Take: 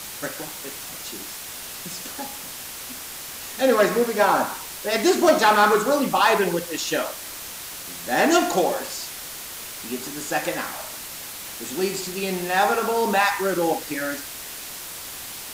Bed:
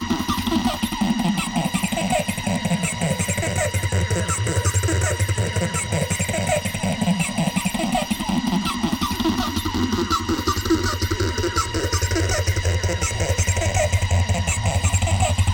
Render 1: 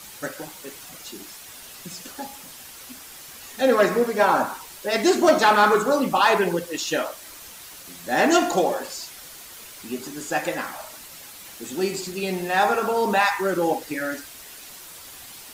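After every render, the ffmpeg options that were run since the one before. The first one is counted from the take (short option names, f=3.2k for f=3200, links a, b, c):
-af "afftdn=nr=8:nf=-36"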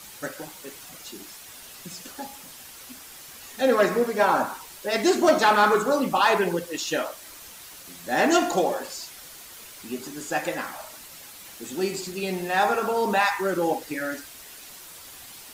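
-af "volume=-2dB"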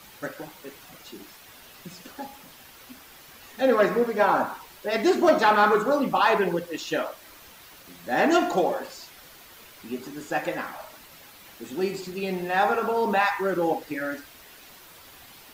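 -af "equalizer=f=8.6k:t=o:w=1.6:g=-10.5"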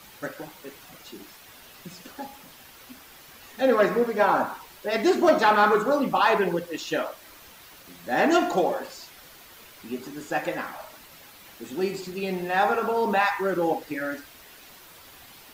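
-af anull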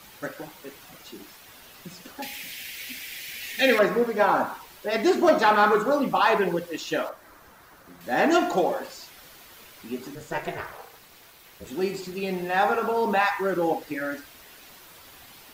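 -filter_complex "[0:a]asettb=1/sr,asplit=3[a][b][c];[a]atrim=end=2.224[d];[b]atrim=start=2.22:end=3.79,asetpts=PTS-STARTPTS,afade=t=in:d=0.004:c=qsin,afade=t=out:st=1.566:d=0.004:c=qsin,highshelf=f=1.6k:t=q:w=3:g=10[e];[c]atrim=start=3.786[f];[d][e]acrossfade=d=0.004:c1=hsin:c2=qsin[g];[g][f]acrossfade=d=0.004:c1=qsin:c2=hsin,asettb=1/sr,asplit=3[h][i][j];[h]atrim=end=7.094[k];[i]atrim=start=7.09:end=8.01,asetpts=PTS-STARTPTS,afade=t=in:d=0.004:c=qsin,afade=t=out:st=0.916:d=0.004:c=qsin,highshelf=f=2k:t=q:w=1.5:g=-8[l];[j]atrim=start=8.006[m];[k][l]acrossfade=d=0.004:c1=hsin:c2=qsin[n];[n][m]acrossfade=d=0.004:c1=qsin:c2=hsin,asettb=1/sr,asplit=3[o][p][q];[o]atrim=end=10.154[r];[p]atrim=start=10.15:end=11.67,asetpts=PTS-STARTPTS,afade=t=in:d=0.004:c=qsin,afade=t=out:st=1.516:d=0.004:c=qsin,aeval=exprs='val(0)*sin(2*PI*160*n/s)':c=same[s];[q]atrim=start=11.666[t];[r][s]acrossfade=d=0.004:c1=hsin:c2=qsin[u];[u][t]acrossfade=d=0.004:c1=qsin:c2=hsin"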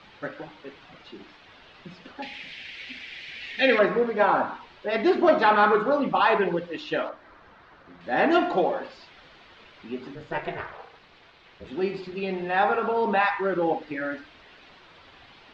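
-af "lowpass=f=3.9k:w=0.5412,lowpass=f=3.9k:w=1.3066,bandreject=f=60:t=h:w=6,bandreject=f=120:t=h:w=6,bandreject=f=180:t=h:w=6,bandreject=f=240:t=h:w=6,bandreject=f=300:t=h:w=6"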